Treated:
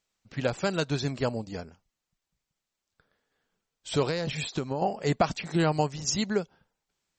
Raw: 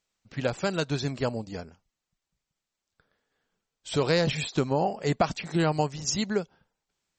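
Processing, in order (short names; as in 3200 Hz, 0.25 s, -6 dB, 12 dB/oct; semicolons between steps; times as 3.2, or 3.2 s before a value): 4.03–4.82 compressor 6:1, threshold -27 dBFS, peak gain reduction 8 dB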